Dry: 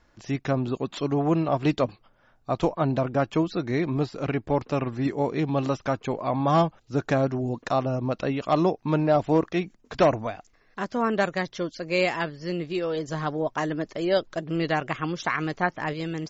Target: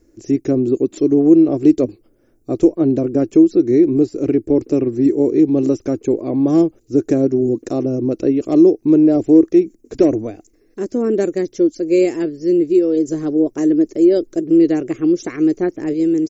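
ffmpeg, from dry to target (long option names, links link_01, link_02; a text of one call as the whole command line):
ffmpeg -i in.wav -filter_complex "[0:a]firequalizer=gain_entry='entry(110,0);entry(160,-5);entry(330,15);entry(610,-5);entry(920,-17);entry(2300,-9);entry(3300,-15);entry(5900,2);entry(9200,10)':delay=0.05:min_phase=1,asplit=2[link_01][link_02];[link_02]alimiter=limit=-10.5dB:level=0:latency=1:release=150,volume=1dB[link_03];[link_01][link_03]amix=inputs=2:normalize=0,volume=-2dB" out.wav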